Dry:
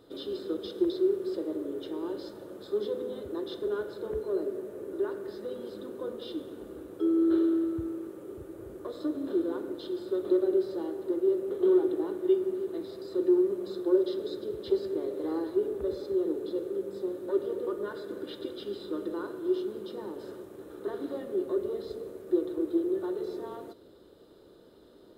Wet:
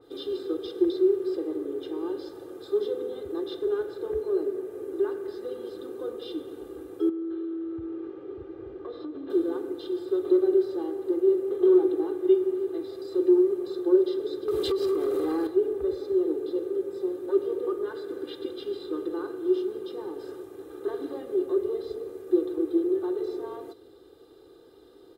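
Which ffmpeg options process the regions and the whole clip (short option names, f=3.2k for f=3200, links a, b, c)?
-filter_complex "[0:a]asettb=1/sr,asplit=3[a][b][c];[a]atrim=end=7.094[d];[b]atrim=start=7.09:end=9.3,asetpts=PTS-STARTPTS,afade=t=in:d=0.004:c=qsin,afade=t=out:st=2.206:d=0.004:c=qsin,lowpass=f=3.8k:w=0.5412,lowpass=f=3.8k:w=1.3066,acompressor=threshold=-34dB:ratio=6:attack=3.2:release=140:knee=1:detection=peak[e];[c]atrim=start=9.296[f];[d][e]acrossfade=d=0.004:c1=hsin:c2=qsin[g];[g][f]acrossfade=d=0.004:c1=qsin:c2=hsin,asettb=1/sr,asplit=3[h][i][j];[h]atrim=end=14.484[k];[i]atrim=start=14.48:end=15.47,asetpts=PTS-STARTPTS,afade=t=in:d=0.004:c=qsin,afade=t=out:st=0.986:d=0.004:c=qsin,highshelf=f=3.1k:g=8,acompressor=threshold=-34dB:ratio=12:attack=3.2:release=140:knee=1:detection=peak,aeval=exprs='0.0531*sin(PI/2*2.24*val(0)/0.0531)':c=same[l];[j]atrim=start=15.466[m];[k][l]acrossfade=d=0.004:c1=hsin:c2=qsin[n];[n][m]acrossfade=d=0.004:c1=qsin:c2=hsin,lowshelf=f=68:g=-7.5,aecho=1:1:2.5:0.71,adynamicequalizer=threshold=0.00398:dfrequency=3100:dqfactor=0.7:tfrequency=3100:tqfactor=0.7:attack=5:release=100:ratio=0.375:range=1.5:mode=cutabove:tftype=highshelf"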